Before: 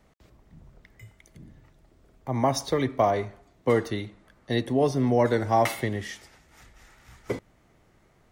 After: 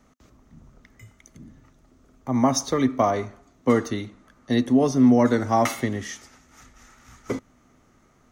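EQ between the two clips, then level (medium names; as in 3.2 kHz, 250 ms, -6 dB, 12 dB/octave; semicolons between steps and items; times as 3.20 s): graphic EQ with 31 bands 250 Hz +11 dB, 1.25 kHz +8 dB, 6.3 kHz +10 dB; 0.0 dB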